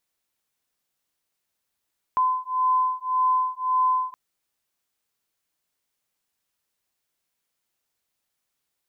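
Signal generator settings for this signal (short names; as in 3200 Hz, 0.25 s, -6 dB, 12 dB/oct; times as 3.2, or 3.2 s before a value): beating tones 1020 Hz, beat 1.8 Hz, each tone -23 dBFS 1.97 s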